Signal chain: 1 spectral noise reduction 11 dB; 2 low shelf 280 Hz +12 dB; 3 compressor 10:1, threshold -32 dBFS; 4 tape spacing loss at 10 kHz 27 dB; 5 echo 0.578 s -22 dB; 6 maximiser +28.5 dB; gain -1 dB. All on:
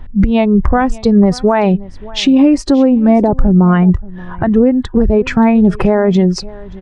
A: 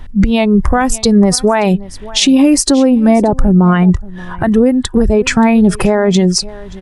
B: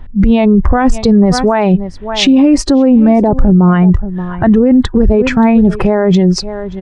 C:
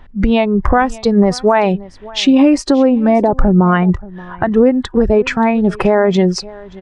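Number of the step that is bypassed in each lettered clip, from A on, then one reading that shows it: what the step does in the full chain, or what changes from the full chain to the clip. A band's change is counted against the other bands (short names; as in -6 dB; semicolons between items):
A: 4, 4 kHz band +6.5 dB; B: 3, mean gain reduction 8.0 dB; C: 2, 125 Hz band -4.5 dB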